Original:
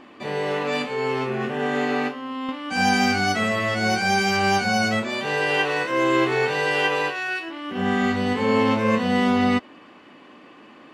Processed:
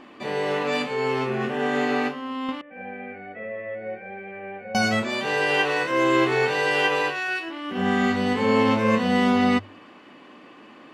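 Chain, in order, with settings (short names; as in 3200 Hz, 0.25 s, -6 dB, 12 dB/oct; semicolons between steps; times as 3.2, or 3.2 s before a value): 2.61–4.75 vocal tract filter e; notches 50/100/150 Hz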